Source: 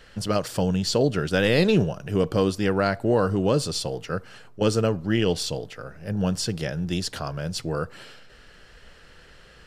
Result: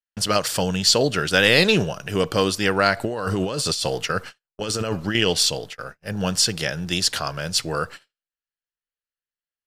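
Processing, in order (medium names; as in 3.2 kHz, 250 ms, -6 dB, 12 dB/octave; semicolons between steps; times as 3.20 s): gate -38 dBFS, range -56 dB; tilt shelf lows -6.5 dB, about 820 Hz; 2.97–5.15 s: compressor with a negative ratio -29 dBFS, ratio -1; trim +4.5 dB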